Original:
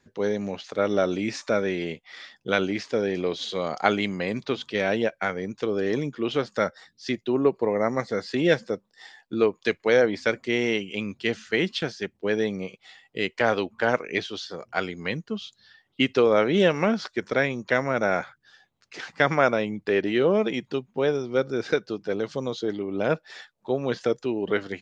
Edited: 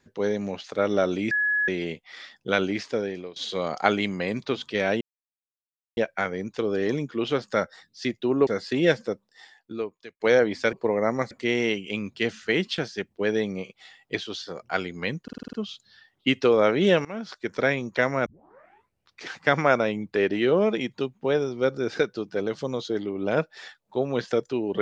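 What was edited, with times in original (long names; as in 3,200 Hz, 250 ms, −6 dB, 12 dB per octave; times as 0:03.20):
0:01.31–0:01.68: beep over 1,690 Hz −20.5 dBFS
0:02.86–0:03.36: fade out, to −22 dB
0:05.01: splice in silence 0.96 s
0:07.51–0:08.09: move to 0:10.35
0:08.69–0:09.82: fade out
0:13.18–0:14.17: remove
0:15.26: stutter 0.05 s, 7 plays
0:16.78–0:17.33: fade in, from −20.5 dB
0:17.99: tape start 1.01 s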